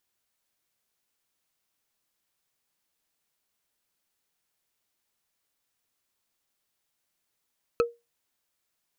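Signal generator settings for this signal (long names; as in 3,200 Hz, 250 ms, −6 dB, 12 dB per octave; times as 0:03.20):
struck wood, lowest mode 471 Hz, decay 0.22 s, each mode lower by 5 dB, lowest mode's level −16 dB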